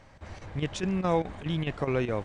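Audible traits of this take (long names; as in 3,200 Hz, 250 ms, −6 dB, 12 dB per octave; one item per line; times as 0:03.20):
chopped level 4.8 Hz, depth 65%, duty 85%
MP2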